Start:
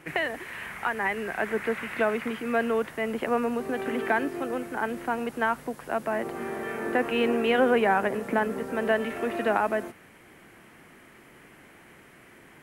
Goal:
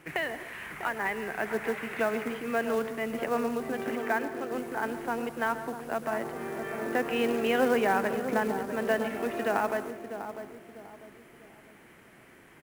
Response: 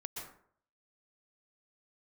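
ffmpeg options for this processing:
-filter_complex "[0:a]asettb=1/sr,asplit=3[link_01][link_02][link_03];[link_01]atrim=end=3.954[link_04];[link_02]atrim=start=3.95:end=4.52,asetpts=PTS-STARTPTS,afade=type=in:duration=0.004:curve=qsin,afade=type=out:start_time=0.566:duration=0.004:curve=qsin,bass=frequency=250:gain=-11,treble=frequency=4000:gain=-12[link_05];[link_03]atrim=start=4.516[link_06];[link_04][link_05]acrossfade=duration=0.004:curve1=hsin:curve2=qsin[link_07];[link_07][link_06]acrossfade=duration=0.004:curve1=qsin:curve2=hsin,asplit=2[link_08][link_09];[link_09]adelay=647,lowpass=frequency=900:poles=1,volume=-8dB,asplit=2[link_10][link_11];[link_11]adelay=647,lowpass=frequency=900:poles=1,volume=0.39,asplit=2[link_12][link_13];[link_13]adelay=647,lowpass=frequency=900:poles=1,volume=0.39,asplit=2[link_14][link_15];[link_15]adelay=647,lowpass=frequency=900:poles=1,volume=0.39[link_16];[link_08][link_10][link_12][link_14][link_16]amix=inputs=5:normalize=0,asplit=2[link_17][link_18];[1:a]atrim=start_sample=2205[link_19];[link_18][link_19]afir=irnorm=-1:irlink=0,volume=-7dB[link_20];[link_17][link_20]amix=inputs=2:normalize=0,acrusher=bits=5:mode=log:mix=0:aa=0.000001,volume=-5.5dB"

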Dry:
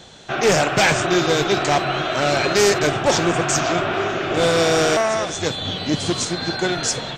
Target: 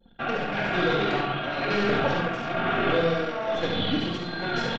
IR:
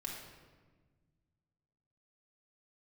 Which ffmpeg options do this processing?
-filter_complex "[0:a]aecho=1:1:4.3:0.44,acompressor=threshold=-18dB:ratio=16[link_01];[1:a]atrim=start_sample=2205,afade=type=out:start_time=0.3:duration=0.01,atrim=end_sample=13671[link_02];[link_01][link_02]afir=irnorm=-1:irlink=0,tremolo=f=0.7:d=0.55,lowpass=frequency=3700:width=0.5412,lowpass=frequency=3700:width=1.3066,aecho=1:1:102|204|306|408:0.631|0.164|0.0427|0.0111,anlmdn=0.631,atempo=1.5"

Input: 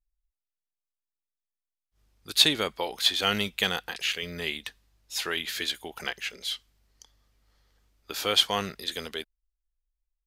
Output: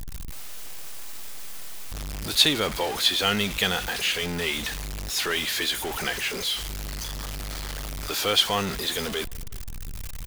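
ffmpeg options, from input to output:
ffmpeg -i in.wav -filter_complex "[0:a]aeval=exprs='val(0)+0.5*0.0473*sgn(val(0))':channel_layout=same,asplit=2[link_01][link_02];[link_02]adelay=368,lowpass=frequency=960:poles=1,volume=-24dB,asplit=2[link_03][link_04];[link_04]adelay=368,lowpass=frequency=960:poles=1,volume=0.42,asplit=2[link_05][link_06];[link_06]adelay=368,lowpass=frequency=960:poles=1,volume=0.42[link_07];[link_01][link_03][link_05][link_07]amix=inputs=4:normalize=0" out.wav

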